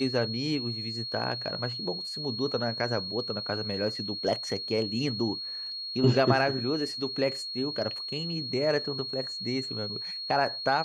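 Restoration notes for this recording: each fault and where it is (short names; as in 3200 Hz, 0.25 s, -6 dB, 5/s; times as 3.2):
tone 4300 Hz -34 dBFS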